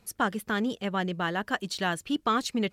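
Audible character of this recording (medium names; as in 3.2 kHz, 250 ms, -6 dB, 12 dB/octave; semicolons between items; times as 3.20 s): noise floor -65 dBFS; spectral tilt -4.0 dB/octave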